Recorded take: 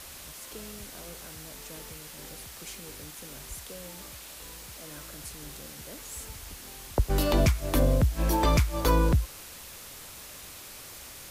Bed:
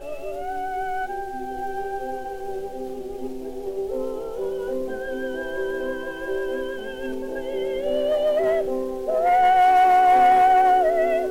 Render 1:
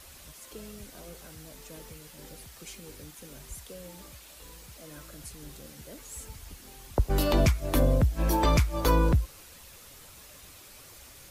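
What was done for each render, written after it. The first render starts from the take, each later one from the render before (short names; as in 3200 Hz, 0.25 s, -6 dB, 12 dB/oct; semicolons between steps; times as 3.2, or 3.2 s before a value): denoiser 7 dB, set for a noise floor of -45 dBFS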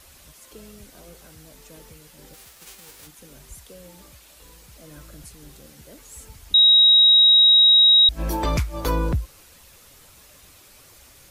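2.33–3.06 spectral whitening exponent 0.3; 4.73–5.25 low shelf 230 Hz +6 dB; 6.54–8.09 bleep 3810 Hz -10 dBFS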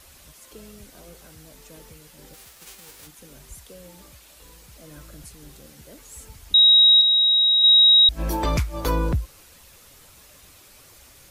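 7.01–7.64 air absorption 160 m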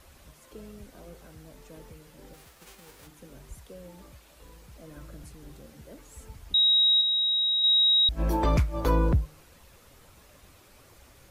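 high shelf 2300 Hz -10.5 dB; de-hum 151.2 Hz, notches 6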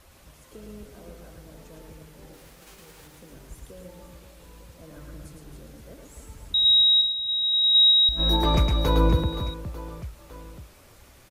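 reverse bouncing-ball echo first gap 0.11 s, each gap 1.5×, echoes 5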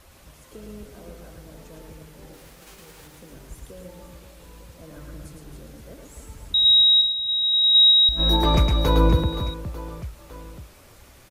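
gain +2.5 dB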